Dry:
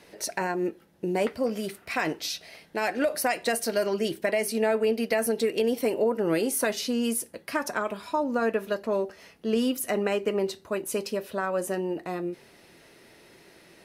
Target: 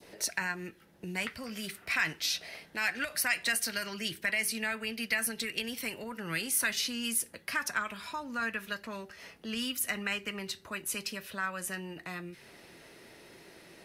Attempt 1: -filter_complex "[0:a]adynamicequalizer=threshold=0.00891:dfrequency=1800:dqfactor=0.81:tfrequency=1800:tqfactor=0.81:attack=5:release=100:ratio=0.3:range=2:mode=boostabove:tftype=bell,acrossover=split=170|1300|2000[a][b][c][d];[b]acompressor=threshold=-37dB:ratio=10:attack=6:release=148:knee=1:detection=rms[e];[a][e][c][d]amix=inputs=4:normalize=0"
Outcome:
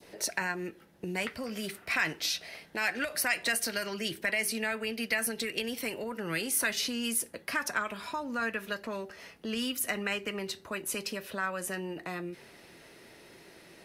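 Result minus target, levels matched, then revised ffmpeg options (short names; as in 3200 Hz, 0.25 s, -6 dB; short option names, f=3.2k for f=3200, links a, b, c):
compressor: peak gain reduction -8.5 dB
-filter_complex "[0:a]adynamicequalizer=threshold=0.00891:dfrequency=1800:dqfactor=0.81:tfrequency=1800:tqfactor=0.81:attack=5:release=100:ratio=0.3:range=2:mode=boostabove:tftype=bell,acrossover=split=170|1300|2000[a][b][c][d];[b]acompressor=threshold=-46.5dB:ratio=10:attack=6:release=148:knee=1:detection=rms[e];[a][e][c][d]amix=inputs=4:normalize=0"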